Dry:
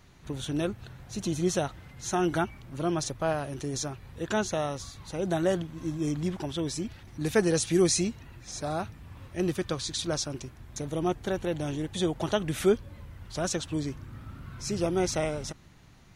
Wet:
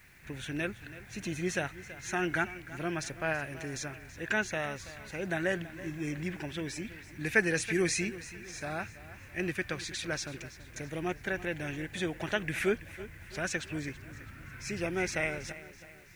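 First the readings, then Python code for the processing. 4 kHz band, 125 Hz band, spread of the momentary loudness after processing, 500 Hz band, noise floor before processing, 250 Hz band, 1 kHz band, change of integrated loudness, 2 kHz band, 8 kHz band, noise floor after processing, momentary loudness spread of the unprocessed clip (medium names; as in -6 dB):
-5.5 dB, -6.5 dB, 13 LU, -6.5 dB, -52 dBFS, -6.5 dB, -5.5 dB, -4.0 dB, +7.0 dB, -6.5 dB, -51 dBFS, 14 LU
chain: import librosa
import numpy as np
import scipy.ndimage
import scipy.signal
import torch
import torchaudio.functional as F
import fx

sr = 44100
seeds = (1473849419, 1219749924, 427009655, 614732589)

p1 = fx.band_shelf(x, sr, hz=2000.0, db=14.5, octaves=1.0)
p2 = fx.quant_dither(p1, sr, seeds[0], bits=10, dither='triangular')
p3 = p2 + fx.echo_feedback(p2, sr, ms=329, feedback_pct=45, wet_db=-16.0, dry=0)
y = p3 * librosa.db_to_amplitude(-6.5)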